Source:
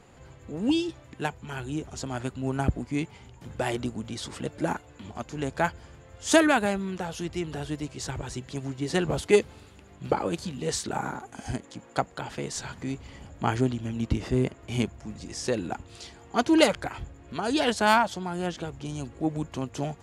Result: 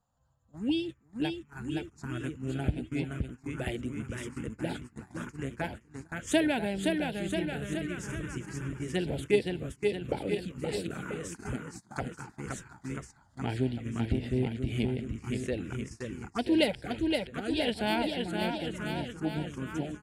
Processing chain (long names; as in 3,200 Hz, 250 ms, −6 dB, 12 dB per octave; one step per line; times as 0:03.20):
bouncing-ball delay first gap 520 ms, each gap 0.9×, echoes 5
noise gate −33 dBFS, range −18 dB
phaser swept by the level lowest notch 380 Hz, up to 1,200 Hz, full sweep at −22 dBFS
level −4 dB